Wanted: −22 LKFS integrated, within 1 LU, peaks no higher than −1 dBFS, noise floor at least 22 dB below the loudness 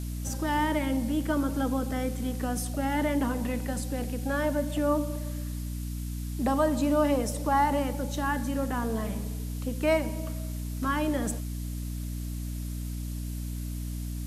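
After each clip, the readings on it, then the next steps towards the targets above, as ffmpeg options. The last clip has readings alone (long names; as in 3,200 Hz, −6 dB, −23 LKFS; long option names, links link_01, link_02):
mains hum 60 Hz; hum harmonics up to 300 Hz; level of the hum −31 dBFS; background noise floor −34 dBFS; target noise floor −52 dBFS; integrated loudness −30.0 LKFS; sample peak −13.5 dBFS; target loudness −22.0 LKFS
→ -af "bandreject=frequency=60:width_type=h:width=6,bandreject=frequency=120:width_type=h:width=6,bandreject=frequency=180:width_type=h:width=6,bandreject=frequency=240:width_type=h:width=6,bandreject=frequency=300:width_type=h:width=6"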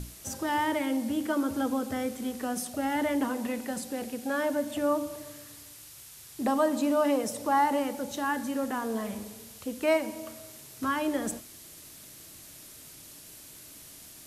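mains hum none found; background noise floor −49 dBFS; target noise floor −52 dBFS
→ -af "afftdn=noise_reduction=6:noise_floor=-49"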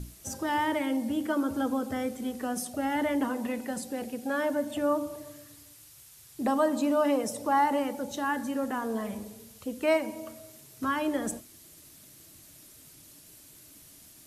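background noise floor −54 dBFS; integrated loudness −30.0 LKFS; sample peak −15.0 dBFS; target loudness −22.0 LKFS
→ -af "volume=8dB"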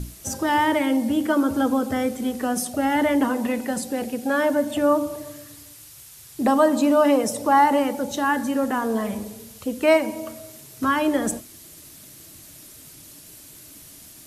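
integrated loudness −22.0 LKFS; sample peak −7.0 dBFS; background noise floor −46 dBFS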